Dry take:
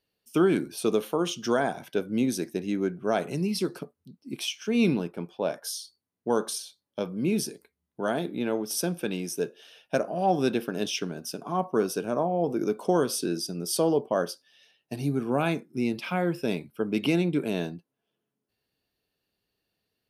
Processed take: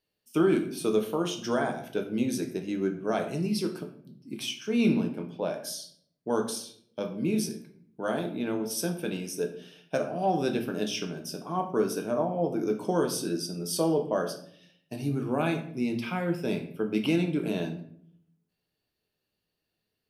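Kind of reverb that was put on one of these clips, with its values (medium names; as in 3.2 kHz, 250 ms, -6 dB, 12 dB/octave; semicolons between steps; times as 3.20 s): simulated room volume 93 m³, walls mixed, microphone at 0.52 m; trim -3.5 dB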